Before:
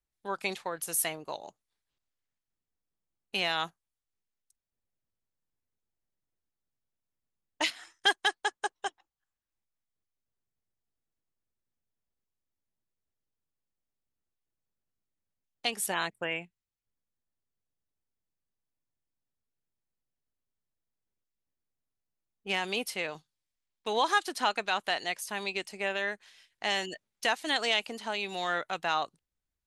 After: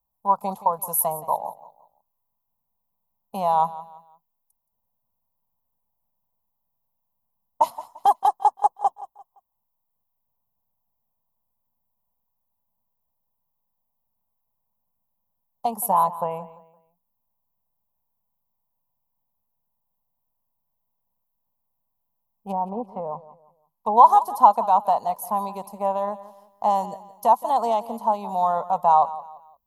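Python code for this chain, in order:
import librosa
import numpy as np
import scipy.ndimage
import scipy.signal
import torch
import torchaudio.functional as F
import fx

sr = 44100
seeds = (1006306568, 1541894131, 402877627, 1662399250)

y = fx.env_lowpass_down(x, sr, base_hz=700.0, full_db=-29.5, at=(22.51, 23.96), fade=0.02)
y = fx.curve_eq(y, sr, hz=(110.0, 230.0, 330.0, 480.0, 1000.0, 1600.0, 2300.0, 9300.0, 13000.0), db=(0, 4, -16, 0, 14, -26, -27, -9, 12))
y = fx.echo_feedback(y, sr, ms=172, feedback_pct=33, wet_db=-16.5)
y = y * librosa.db_to_amplitude(6.0)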